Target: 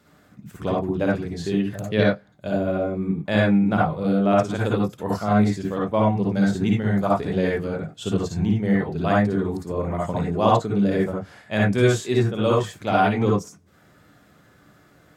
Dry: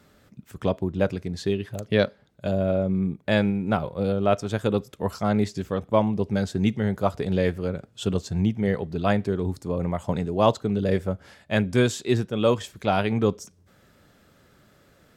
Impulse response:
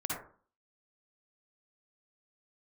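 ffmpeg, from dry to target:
-filter_complex "[0:a]lowshelf=f=70:g=-8[a];[1:a]atrim=start_sample=2205,atrim=end_sample=4410[b];[a][b]afir=irnorm=-1:irlink=0"

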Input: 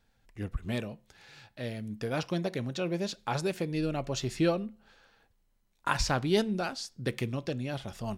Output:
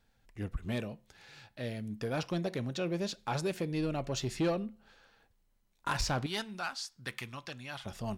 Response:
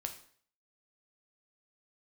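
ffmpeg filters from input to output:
-filter_complex "[0:a]asettb=1/sr,asplit=3[a][b][c];[a]atrim=end=6.264[d];[b]atrim=start=6.26:end=7.86,asetpts=PTS-STARTPTS,afade=t=in:d=0.004:c=qsin,afade=t=out:st=1.596:d=0.004:c=qsin,lowshelf=f=700:t=q:w=1.5:g=-11.5[e];[c]atrim=start=7.856[f];[d][e]acrossfade=d=0.004:c1=hsin:c2=qsin[g];[g][f]acrossfade=d=0.004:c1=qsin:c2=hsin,asoftclip=type=tanh:threshold=-23dB,volume=-1dB"

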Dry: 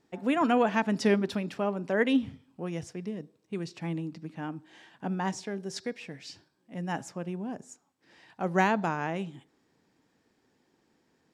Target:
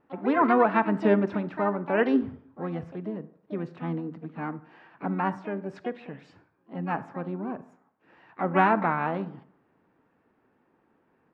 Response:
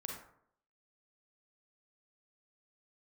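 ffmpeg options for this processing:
-filter_complex "[0:a]lowpass=f=1.3k:t=q:w=1.7,asplit=2[a][b];[b]asetrate=66075,aresample=44100,atempo=0.66742,volume=-9dB[c];[a][c]amix=inputs=2:normalize=0,asplit=2[d][e];[1:a]atrim=start_sample=2205[f];[e][f]afir=irnorm=-1:irlink=0,volume=-11dB[g];[d][g]amix=inputs=2:normalize=0"

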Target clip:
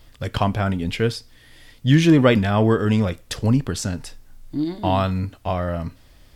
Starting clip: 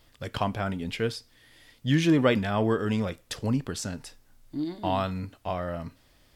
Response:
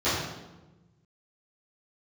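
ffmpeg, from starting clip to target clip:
-af "lowshelf=f=110:g=9,volume=6dB"

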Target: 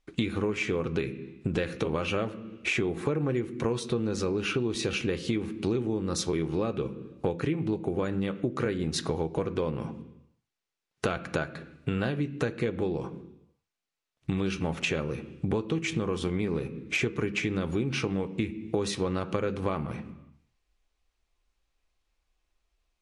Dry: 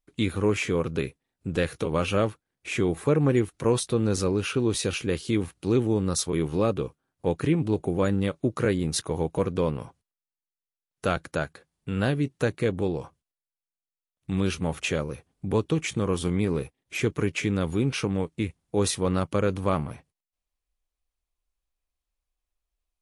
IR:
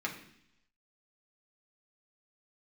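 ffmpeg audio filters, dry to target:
-filter_complex "[0:a]lowpass=6.3k,asplit=2[a][b];[1:a]atrim=start_sample=2205,asetrate=48510,aresample=44100[c];[b][c]afir=irnorm=-1:irlink=0,volume=-8.5dB[d];[a][d]amix=inputs=2:normalize=0,acompressor=threshold=-34dB:ratio=8,volume=8dB"

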